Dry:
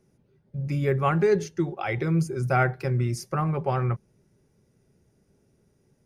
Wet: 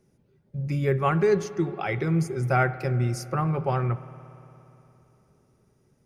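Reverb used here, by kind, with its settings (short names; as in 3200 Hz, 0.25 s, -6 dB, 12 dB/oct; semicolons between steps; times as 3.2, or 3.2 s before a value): spring tank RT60 3.2 s, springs 57 ms, chirp 50 ms, DRR 14.5 dB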